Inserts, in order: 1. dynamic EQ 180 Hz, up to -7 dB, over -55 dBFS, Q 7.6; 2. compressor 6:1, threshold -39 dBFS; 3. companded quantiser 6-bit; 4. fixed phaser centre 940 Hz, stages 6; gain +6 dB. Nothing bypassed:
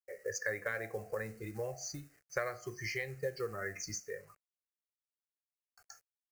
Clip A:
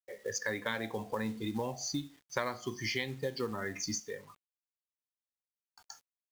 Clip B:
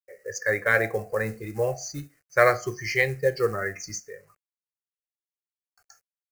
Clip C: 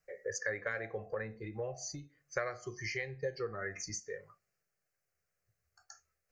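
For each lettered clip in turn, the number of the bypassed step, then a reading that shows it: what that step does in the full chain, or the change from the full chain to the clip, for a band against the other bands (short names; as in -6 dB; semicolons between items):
4, 250 Hz band +7.5 dB; 2, mean gain reduction 10.0 dB; 3, distortion -23 dB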